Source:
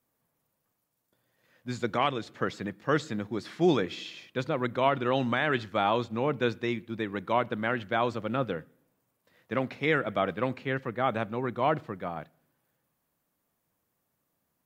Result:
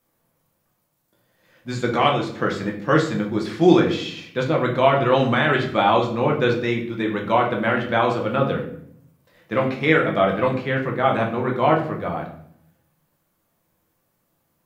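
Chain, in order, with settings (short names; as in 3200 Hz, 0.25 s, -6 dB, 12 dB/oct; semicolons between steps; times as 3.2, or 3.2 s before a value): shoebox room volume 110 m³, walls mixed, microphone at 0.79 m; gain +5.5 dB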